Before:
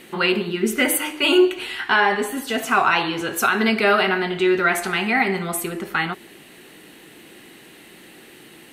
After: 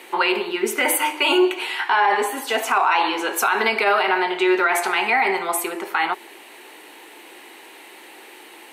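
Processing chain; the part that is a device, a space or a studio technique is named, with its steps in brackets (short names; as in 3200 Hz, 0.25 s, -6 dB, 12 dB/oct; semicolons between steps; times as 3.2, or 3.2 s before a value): laptop speaker (HPF 330 Hz 24 dB/oct; bell 910 Hz +11 dB 0.49 oct; bell 2300 Hz +5 dB 0.22 oct; limiter -10.5 dBFS, peak gain reduction 10.5 dB); gain +1.5 dB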